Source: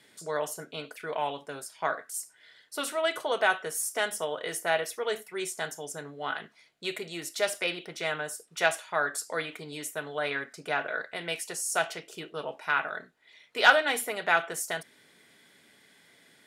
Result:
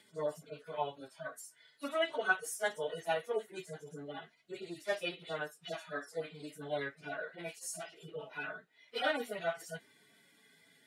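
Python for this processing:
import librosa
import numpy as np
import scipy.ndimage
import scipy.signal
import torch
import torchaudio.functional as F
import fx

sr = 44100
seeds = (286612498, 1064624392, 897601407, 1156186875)

y = fx.hpss_only(x, sr, part='harmonic')
y = fx.stretch_vocoder_free(y, sr, factor=0.66)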